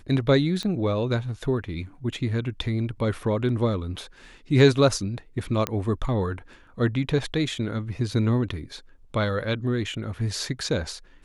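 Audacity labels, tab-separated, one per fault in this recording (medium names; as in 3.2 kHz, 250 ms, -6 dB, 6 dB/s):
0.630000	0.630000	pop -19 dBFS
5.670000	5.670000	pop -10 dBFS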